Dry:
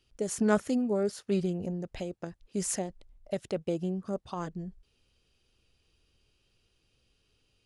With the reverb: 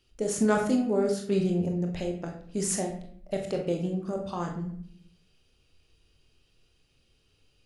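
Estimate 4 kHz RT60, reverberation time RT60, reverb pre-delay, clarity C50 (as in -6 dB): 0.45 s, 0.60 s, 23 ms, 6.5 dB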